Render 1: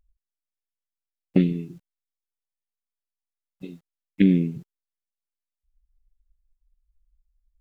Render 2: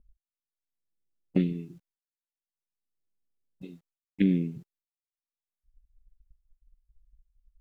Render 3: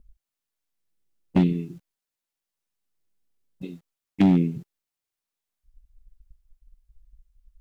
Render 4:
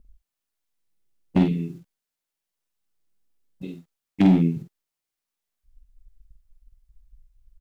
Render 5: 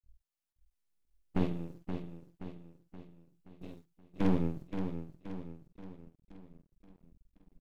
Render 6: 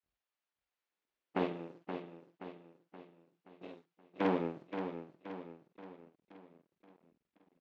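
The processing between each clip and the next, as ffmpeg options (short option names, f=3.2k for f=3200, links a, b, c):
-filter_complex "[0:a]agate=range=-33dB:threshold=-57dB:ratio=3:detection=peak,acrossover=split=480[a][b];[a]acompressor=mode=upward:threshold=-36dB:ratio=2.5[c];[c][b]amix=inputs=2:normalize=0,volume=-6dB"
-af "asoftclip=type=hard:threshold=-19.5dB,volume=7.5dB"
-filter_complex "[0:a]asplit=2[a][b];[b]adelay=48,volume=-5dB[c];[a][c]amix=inputs=2:normalize=0"
-af "aecho=1:1:525|1050|1575|2100|2625|3150:0.398|0.195|0.0956|0.0468|0.023|0.0112,aeval=exprs='max(val(0),0)':c=same,volume=-7.5dB"
-af "highpass=420,lowpass=3.1k,volume=5.5dB"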